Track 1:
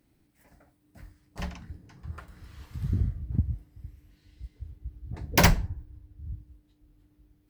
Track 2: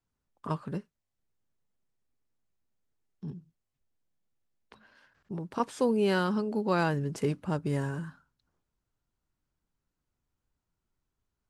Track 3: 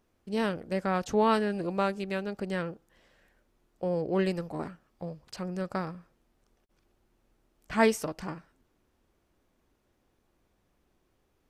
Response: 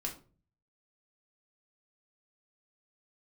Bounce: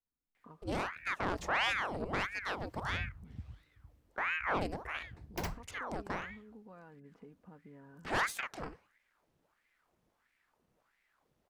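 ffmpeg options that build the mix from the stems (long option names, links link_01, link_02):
-filter_complex "[0:a]agate=range=-33dB:threshold=-52dB:ratio=3:detection=peak,volume=-14.5dB[link_01];[1:a]lowpass=1800,aecho=1:1:4.1:0.56,acompressor=threshold=-38dB:ratio=4,volume=-15dB,asplit=2[link_02][link_03];[2:a]aeval=exprs='(tanh(17.8*val(0)+0.55)-tanh(0.55))/17.8':channel_layout=same,aeval=exprs='val(0)*sin(2*PI*1100*n/s+1100*0.9/1.5*sin(2*PI*1.5*n/s))':channel_layout=same,adelay=350,volume=0dB[link_04];[link_03]apad=whole_len=330634[link_05];[link_01][link_05]sidechaincompress=threshold=-59dB:ratio=3:attack=6.7:release=1040[link_06];[link_06][link_02][link_04]amix=inputs=3:normalize=0"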